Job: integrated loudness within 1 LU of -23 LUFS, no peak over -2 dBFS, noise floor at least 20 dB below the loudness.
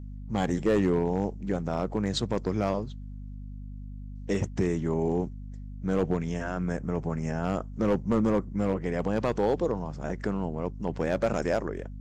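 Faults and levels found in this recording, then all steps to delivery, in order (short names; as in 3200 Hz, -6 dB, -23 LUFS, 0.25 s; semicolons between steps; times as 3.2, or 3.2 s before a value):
clipped 0.6%; flat tops at -17.0 dBFS; hum 50 Hz; harmonics up to 250 Hz; hum level -37 dBFS; loudness -29.0 LUFS; peak -17.0 dBFS; loudness target -23.0 LUFS
-> clip repair -17 dBFS; de-hum 50 Hz, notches 5; gain +6 dB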